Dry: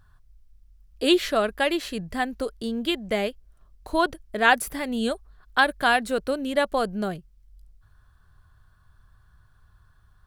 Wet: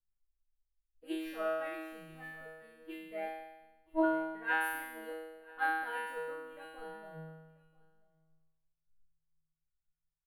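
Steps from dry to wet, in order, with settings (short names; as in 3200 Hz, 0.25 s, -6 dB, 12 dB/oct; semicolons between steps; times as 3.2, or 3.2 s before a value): band shelf 5200 Hz -16 dB; resonator 160 Hz, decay 1.8 s, mix 100%; echo 0.986 s -15.5 dB; three-band expander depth 70%; gain +5 dB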